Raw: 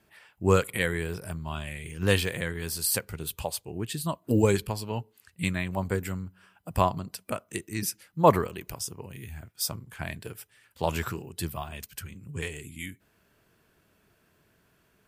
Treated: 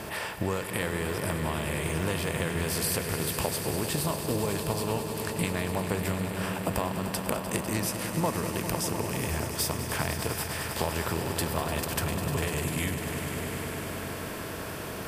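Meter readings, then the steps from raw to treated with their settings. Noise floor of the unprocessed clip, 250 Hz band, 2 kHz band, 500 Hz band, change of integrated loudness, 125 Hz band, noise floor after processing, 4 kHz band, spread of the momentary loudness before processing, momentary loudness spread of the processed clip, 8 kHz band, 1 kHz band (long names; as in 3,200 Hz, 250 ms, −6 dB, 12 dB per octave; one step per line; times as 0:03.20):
−68 dBFS, +1.0 dB, +1.5 dB, −1.5 dB, −0.5 dB, +0.5 dB, −37 dBFS, +2.5 dB, 16 LU, 4 LU, +3.0 dB, −1.5 dB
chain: compressor on every frequency bin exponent 0.6
downward compressor, threshold −34 dBFS, peak gain reduction 21 dB
echo that builds up and dies away 100 ms, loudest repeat 5, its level −11.5 dB
level +6 dB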